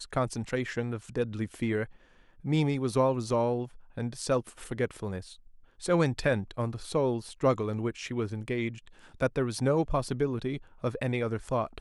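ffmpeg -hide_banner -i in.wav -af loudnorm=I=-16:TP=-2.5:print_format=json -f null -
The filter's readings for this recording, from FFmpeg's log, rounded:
"input_i" : "-30.8",
"input_tp" : "-12.0",
"input_lra" : "1.1",
"input_thresh" : "-41.1",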